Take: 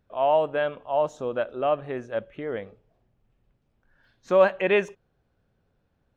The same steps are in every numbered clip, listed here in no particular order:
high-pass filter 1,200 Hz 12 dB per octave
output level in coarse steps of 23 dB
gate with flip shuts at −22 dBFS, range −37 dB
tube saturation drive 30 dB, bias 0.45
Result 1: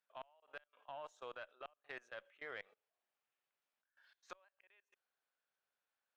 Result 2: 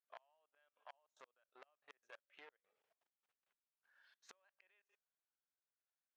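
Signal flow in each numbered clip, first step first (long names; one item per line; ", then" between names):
high-pass filter, then gate with flip, then output level in coarse steps, then tube saturation
gate with flip, then tube saturation, then output level in coarse steps, then high-pass filter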